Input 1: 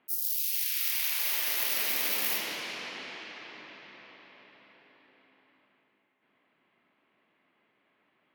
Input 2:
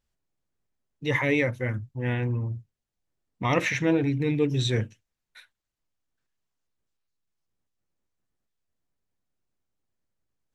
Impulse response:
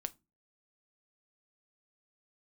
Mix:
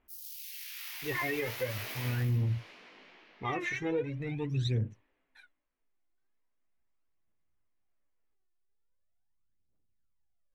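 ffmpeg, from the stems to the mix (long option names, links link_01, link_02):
-filter_complex "[0:a]flanger=delay=16:depth=3.7:speed=2.5,volume=-1dB,afade=type=out:start_time=2.04:duration=0.26:silence=0.375837,afade=type=out:start_time=4.96:duration=0.67:silence=0.316228[link_01];[1:a]aphaser=in_gain=1:out_gain=1:delay=2.9:decay=0.8:speed=0.41:type=triangular,volume=-8.5dB[link_02];[link_01][link_02]amix=inputs=2:normalize=0,highshelf=frequency=3400:gain=-10.5,alimiter=limit=-23.5dB:level=0:latency=1:release=111"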